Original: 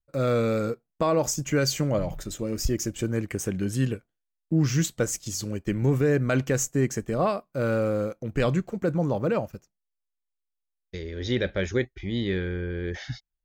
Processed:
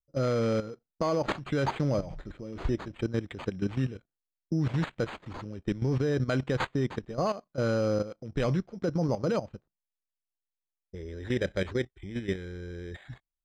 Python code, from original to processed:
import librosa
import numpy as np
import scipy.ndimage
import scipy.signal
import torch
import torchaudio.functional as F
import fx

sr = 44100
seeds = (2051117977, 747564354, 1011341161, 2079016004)

y = fx.env_lowpass(x, sr, base_hz=420.0, full_db=-24.5)
y = fx.high_shelf(y, sr, hz=10000.0, db=5.5)
y = fx.level_steps(y, sr, step_db=13)
y = np.repeat(y[::8], 8)[:len(y)]
y = fx.air_absorb(y, sr, metres=140.0)